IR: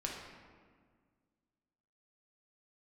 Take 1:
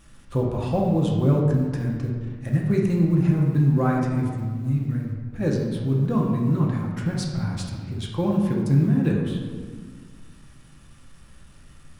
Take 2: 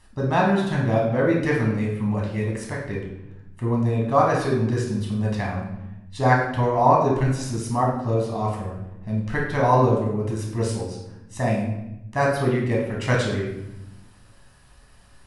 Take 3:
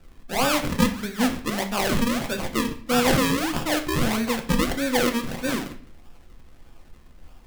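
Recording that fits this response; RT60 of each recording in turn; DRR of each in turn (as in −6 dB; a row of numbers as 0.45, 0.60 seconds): 1; 1.7, 0.90, 0.50 seconds; −2.0, −2.5, 4.5 decibels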